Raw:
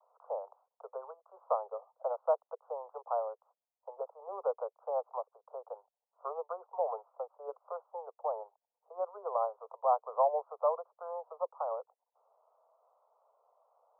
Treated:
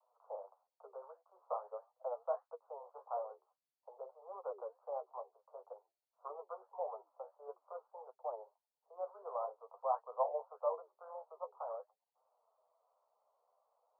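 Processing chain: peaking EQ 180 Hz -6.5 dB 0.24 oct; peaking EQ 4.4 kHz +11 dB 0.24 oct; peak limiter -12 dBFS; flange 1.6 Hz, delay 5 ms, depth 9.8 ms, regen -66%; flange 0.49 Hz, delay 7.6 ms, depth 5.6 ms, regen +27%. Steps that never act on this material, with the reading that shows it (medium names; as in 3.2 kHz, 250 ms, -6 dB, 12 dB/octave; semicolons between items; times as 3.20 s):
peaking EQ 180 Hz: input has nothing below 360 Hz; peaking EQ 4.4 kHz: input has nothing above 1.4 kHz; peak limiter -12 dBFS: peak at its input -17.5 dBFS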